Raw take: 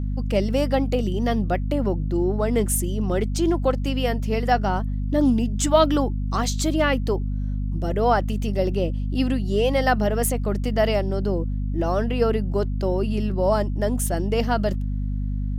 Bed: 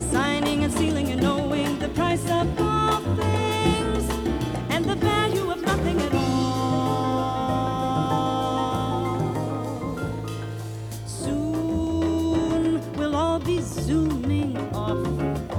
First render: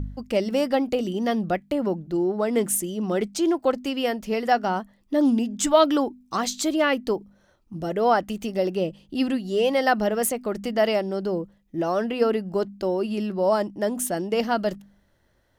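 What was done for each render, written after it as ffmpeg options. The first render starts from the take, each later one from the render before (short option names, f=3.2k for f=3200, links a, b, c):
-af "bandreject=f=50:t=h:w=4,bandreject=f=100:t=h:w=4,bandreject=f=150:t=h:w=4,bandreject=f=200:t=h:w=4,bandreject=f=250:t=h:w=4"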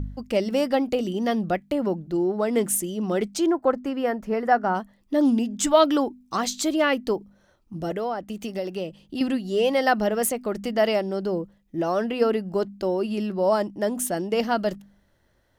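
-filter_complex "[0:a]asettb=1/sr,asplit=3[a][b][c];[a]atrim=end=3.464[d];[b]atrim=start=3.46:end=4.75,asetpts=PTS-STARTPTS,afade=t=in:d=0.004:c=qsin,afade=t=out:st=1.286:d=0.004:c=qsin,highshelf=f=2.2k:t=q:w=1.5:g=-10[e];[c]atrim=start=4.746[f];[d][e]acrossfade=d=0.004:c1=hsin:c2=qsin[g];[g][f]acrossfade=d=0.004:c1=qsin:c2=hsin,asettb=1/sr,asplit=3[h][i][j];[h]atrim=end=7.914[k];[i]atrim=start=7.91:end=9.21,asetpts=PTS-STARTPTS,afade=t=in:d=0.004:c=qsin,afade=t=out:st=1.296:d=0.004:c=qsin,acrossover=split=92|740[l][m][n];[l]acompressor=threshold=-59dB:ratio=4[o];[m]acompressor=threshold=-29dB:ratio=4[p];[n]acompressor=threshold=-35dB:ratio=4[q];[o][p][q]amix=inputs=3:normalize=0[r];[j]atrim=start=9.206[s];[k][r]acrossfade=d=0.004:c1=hsin:c2=qsin[t];[t][s]acrossfade=d=0.004:c1=qsin:c2=hsin"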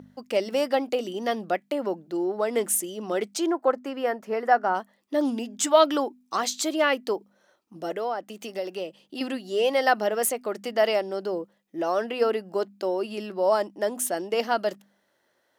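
-af "highpass=370"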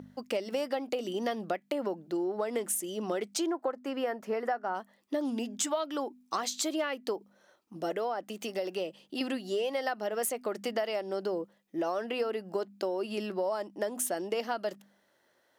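-af "acompressor=threshold=-28dB:ratio=12"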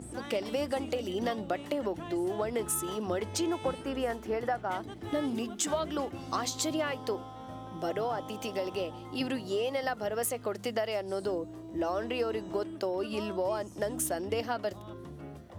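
-filter_complex "[1:a]volume=-19.5dB[a];[0:a][a]amix=inputs=2:normalize=0"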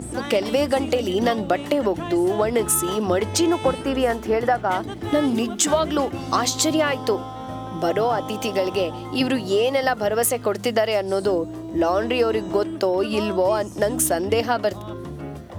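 -af "volume=11.5dB"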